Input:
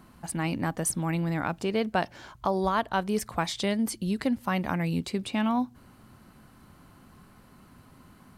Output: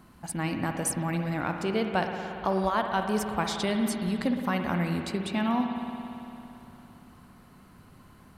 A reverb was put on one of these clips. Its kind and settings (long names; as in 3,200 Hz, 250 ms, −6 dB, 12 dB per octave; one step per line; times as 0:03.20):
spring reverb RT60 3.1 s, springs 57 ms, chirp 35 ms, DRR 4 dB
level −1 dB